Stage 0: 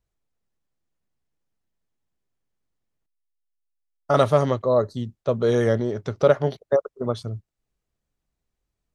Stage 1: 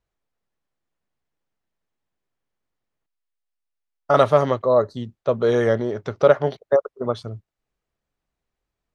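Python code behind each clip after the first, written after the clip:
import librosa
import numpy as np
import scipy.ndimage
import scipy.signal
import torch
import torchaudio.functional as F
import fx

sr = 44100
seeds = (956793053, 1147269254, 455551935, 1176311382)

y = fx.lowpass(x, sr, hz=2500.0, slope=6)
y = fx.low_shelf(y, sr, hz=360.0, db=-9.0)
y = F.gain(torch.from_numpy(y), 5.5).numpy()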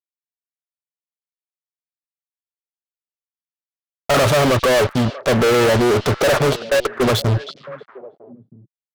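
y = fx.fuzz(x, sr, gain_db=39.0, gate_db=-41.0)
y = fx.echo_stepped(y, sr, ms=318, hz=3700.0, octaves=-1.4, feedback_pct=70, wet_db=-11)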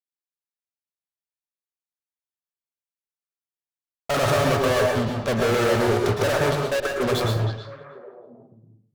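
y = fx.rev_plate(x, sr, seeds[0], rt60_s=0.61, hf_ratio=0.5, predelay_ms=100, drr_db=0.5)
y = F.gain(torch.from_numpy(y), -8.0).numpy()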